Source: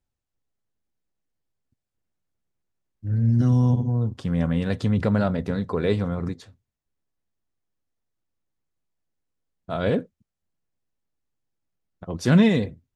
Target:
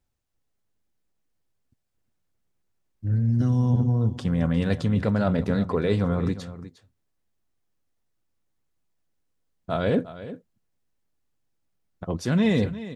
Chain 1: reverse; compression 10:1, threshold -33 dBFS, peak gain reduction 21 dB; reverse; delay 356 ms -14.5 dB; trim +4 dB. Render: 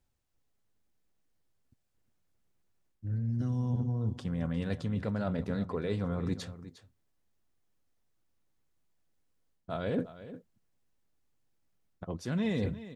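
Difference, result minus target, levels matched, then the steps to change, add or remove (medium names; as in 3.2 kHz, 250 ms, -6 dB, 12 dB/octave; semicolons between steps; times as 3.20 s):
compression: peak gain reduction +10 dB
change: compression 10:1, threshold -22 dBFS, peak gain reduction 11 dB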